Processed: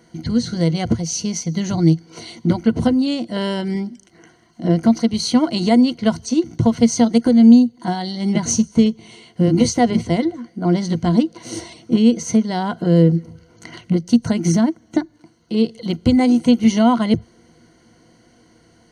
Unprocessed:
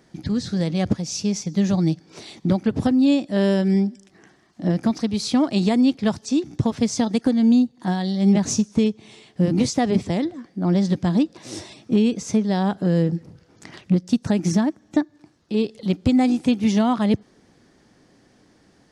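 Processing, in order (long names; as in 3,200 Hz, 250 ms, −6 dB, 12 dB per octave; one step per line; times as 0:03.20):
EQ curve with evenly spaced ripples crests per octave 1.9, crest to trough 13 dB
level +2 dB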